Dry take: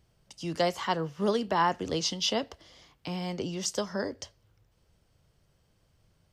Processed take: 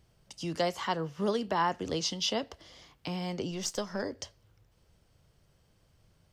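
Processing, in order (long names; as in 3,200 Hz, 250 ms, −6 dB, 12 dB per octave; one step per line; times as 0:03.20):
0:03.51–0:04.03: gain on one half-wave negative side −3 dB
in parallel at 0 dB: downward compressor, threshold −37 dBFS, peak gain reduction 15 dB
on the sum: level −4.5 dB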